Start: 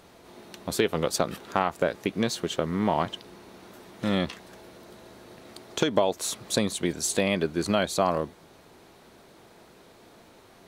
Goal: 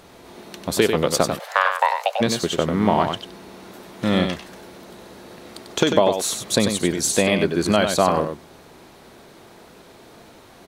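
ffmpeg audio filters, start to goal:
-filter_complex "[0:a]aecho=1:1:95:0.473,asplit=3[a][b][c];[a]afade=t=out:st=1.38:d=0.02[d];[b]afreqshift=380,afade=t=in:st=1.38:d=0.02,afade=t=out:st=2.2:d=0.02[e];[c]afade=t=in:st=2.2:d=0.02[f];[d][e][f]amix=inputs=3:normalize=0,volume=6dB"

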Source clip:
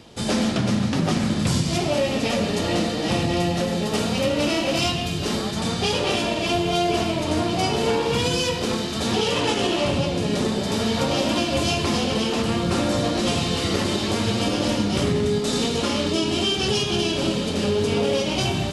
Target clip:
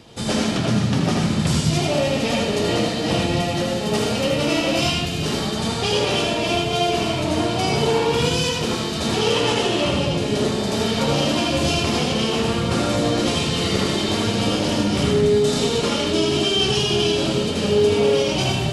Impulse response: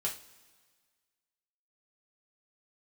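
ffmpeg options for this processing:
-filter_complex "[0:a]asplit=2[a][b];[1:a]atrim=start_sample=2205,adelay=77[c];[b][c]afir=irnorm=-1:irlink=0,volume=-5dB[d];[a][d]amix=inputs=2:normalize=0"

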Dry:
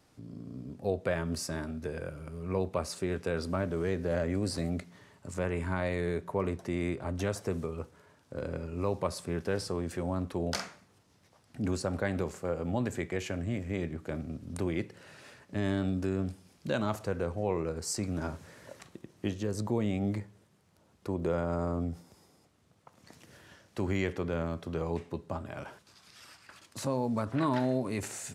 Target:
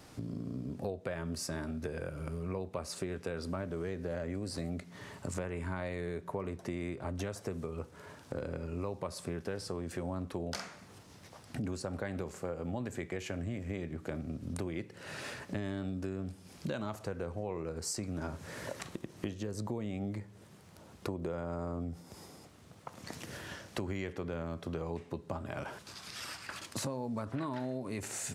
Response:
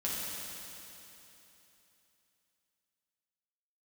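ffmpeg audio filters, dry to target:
-af "acompressor=threshold=-47dB:ratio=5,volume=10.5dB"

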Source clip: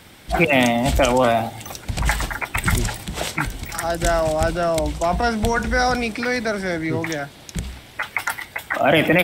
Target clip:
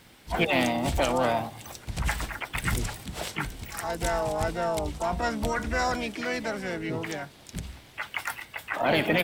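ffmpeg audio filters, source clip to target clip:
-filter_complex "[0:a]aeval=exprs='0.596*(cos(1*acos(clip(val(0)/0.596,-1,1)))-cos(1*PI/2))+0.0168*(cos(3*acos(clip(val(0)/0.596,-1,1)))-cos(3*PI/2))+0.0106*(cos(4*acos(clip(val(0)/0.596,-1,1)))-cos(4*PI/2))+0.00376*(cos(6*acos(clip(val(0)/0.596,-1,1)))-cos(6*PI/2))':c=same,asplit=3[a][b][c];[b]asetrate=33038,aresample=44100,atempo=1.33484,volume=-15dB[d];[c]asetrate=58866,aresample=44100,atempo=0.749154,volume=-7dB[e];[a][d][e]amix=inputs=3:normalize=0,volume=-8.5dB"

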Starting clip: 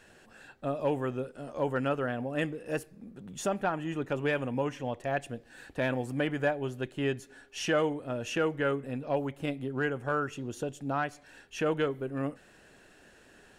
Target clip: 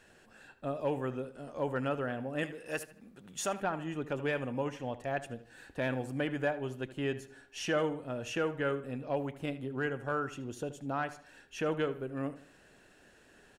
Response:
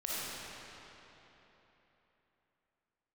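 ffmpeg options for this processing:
-filter_complex "[0:a]asettb=1/sr,asplit=3[a][b][c];[a]atrim=end=2.434[d];[b]atrim=start=2.43:end=3.62,asetpts=PTS-STARTPTS,afade=t=in:d=0.004:c=qsin,afade=t=out:st=1.186:d=0.004:c=qsin,tiltshelf=f=670:g=-6[e];[c]atrim=start=3.616[f];[d][e]acrossfade=d=0.004:c1=hsin:c2=qsin[g];[g][f]acrossfade=d=0.004:c1=qsin:c2=hsin,asplit=2[h][i];[i]adelay=77,lowpass=f=4.2k:p=1,volume=-14dB,asplit=2[j][k];[k]adelay=77,lowpass=f=4.2k:p=1,volume=0.37,asplit=2[l][m];[m]adelay=77,lowpass=f=4.2k:p=1,volume=0.37,asplit=2[n][o];[o]adelay=77,lowpass=f=4.2k:p=1,volume=0.37[p];[h][j][l][n][p]amix=inputs=5:normalize=0,volume=-3.5dB"

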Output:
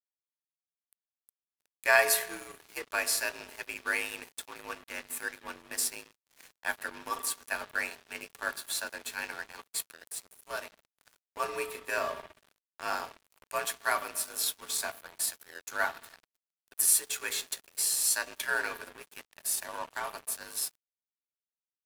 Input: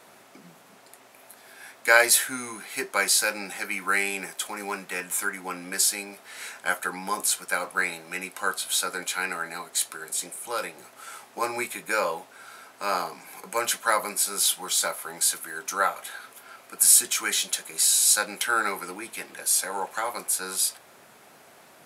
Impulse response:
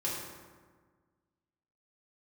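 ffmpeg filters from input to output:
-filter_complex "[0:a]asplit=2[a][b];[1:a]atrim=start_sample=2205,lowpass=4.9k[c];[b][c]afir=irnorm=-1:irlink=0,volume=-11.5dB[d];[a][d]amix=inputs=2:normalize=0,asetrate=46722,aresample=44100,atempo=0.943874,afreqshift=54,aeval=exprs='sgn(val(0))*max(abs(val(0))-0.02,0)':c=same,volume=-6.5dB"

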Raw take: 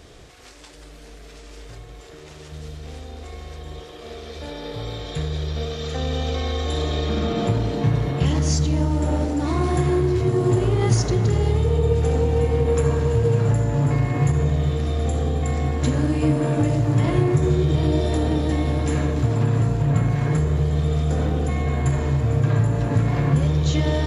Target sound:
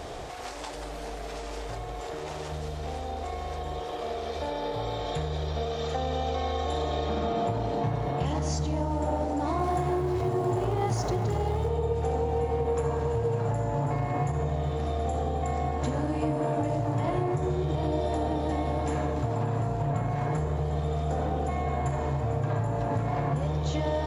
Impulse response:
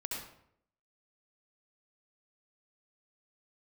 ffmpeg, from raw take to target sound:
-filter_complex "[0:a]asettb=1/sr,asplit=3[a][b][c];[a]atrim=end=9.594[d];[b]atrim=start=9.59:end=11.68,asetpts=PTS-STARTPTS,afade=t=in:d=0.004:c=qsin,afade=t=out:st=2.086:d=0.004:c=qsin,aeval=exprs='val(0)+0.5*0.0251*sgn(val(0))':c=same[e];[c]atrim=start=11.676[f];[d][e]acrossfade=d=0.004:c1=hsin:c2=qsin[g];[g][f]acrossfade=d=0.004:c1=qsin:c2=hsin,equalizer=f=770:w=1.2:g=13,acompressor=threshold=-37dB:ratio=2.5,volume=4dB"

